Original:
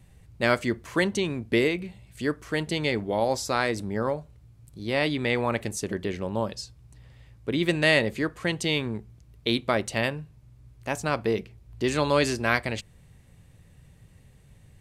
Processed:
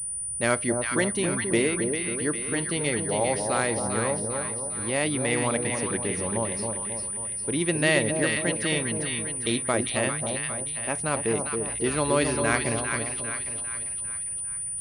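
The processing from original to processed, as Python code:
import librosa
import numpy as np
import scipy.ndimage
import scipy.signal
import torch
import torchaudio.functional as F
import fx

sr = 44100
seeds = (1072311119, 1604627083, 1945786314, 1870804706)

y = fx.echo_split(x, sr, split_hz=1000.0, low_ms=271, high_ms=400, feedback_pct=52, wet_db=-4.5)
y = fx.pwm(y, sr, carrier_hz=9400.0)
y = y * 10.0 ** (-1.5 / 20.0)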